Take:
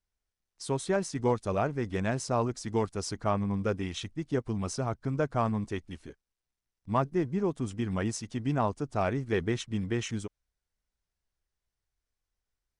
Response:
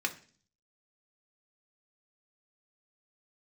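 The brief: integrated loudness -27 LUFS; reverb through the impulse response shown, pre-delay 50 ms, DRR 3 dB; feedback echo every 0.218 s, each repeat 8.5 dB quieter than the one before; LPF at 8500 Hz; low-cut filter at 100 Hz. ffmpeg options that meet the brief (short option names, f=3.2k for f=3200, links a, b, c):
-filter_complex "[0:a]highpass=100,lowpass=8.5k,aecho=1:1:218|436|654|872:0.376|0.143|0.0543|0.0206,asplit=2[a][b];[1:a]atrim=start_sample=2205,adelay=50[c];[b][c]afir=irnorm=-1:irlink=0,volume=-8.5dB[d];[a][d]amix=inputs=2:normalize=0,volume=3dB"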